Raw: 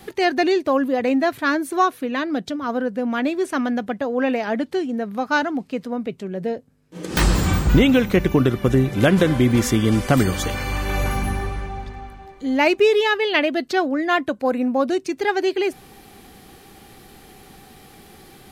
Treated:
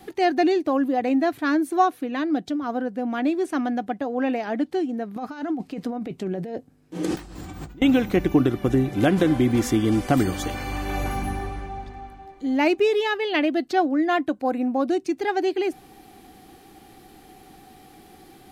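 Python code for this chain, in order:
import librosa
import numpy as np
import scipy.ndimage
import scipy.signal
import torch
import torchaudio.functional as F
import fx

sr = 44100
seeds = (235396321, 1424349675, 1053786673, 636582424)

y = fx.over_compress(x, sr, threshold_db=-29.0, ratio=-1.0, at=(5.16, 7.82))
y = fx.small_body(y, sr, hz=(310.0, 740.0), ring_ms=40, db=9)
y = y * librosa.db_to_amplitude(-6.0)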